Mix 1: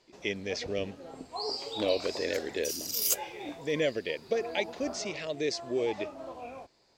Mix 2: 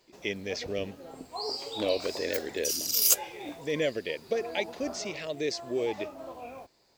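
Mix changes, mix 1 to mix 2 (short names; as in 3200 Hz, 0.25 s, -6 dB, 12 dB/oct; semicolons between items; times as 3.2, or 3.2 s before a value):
first sound: remove LPF 8000 Hz 12 dB/oct; second sound +5.5 dB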